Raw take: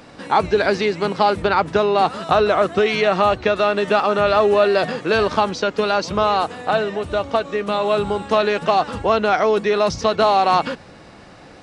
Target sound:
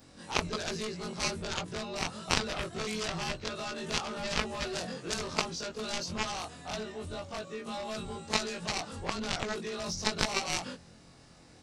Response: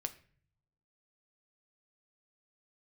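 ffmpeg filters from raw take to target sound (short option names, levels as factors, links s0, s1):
-af "afftfilt=real='re':imag='-im':win_size=2048:overlap=0.75,aeval=exprs='0.473*(cos(1*acos(clip(val(0)/0.473,-1,1)))-cos(1*PI/2))+0.211*(cos(3*acos(clip(val(0)/0.473,-1,1)))-cos(3*PI/2))':c=same,bass=f=250:g=8,treble=f=4000:g=14,volume=0.708"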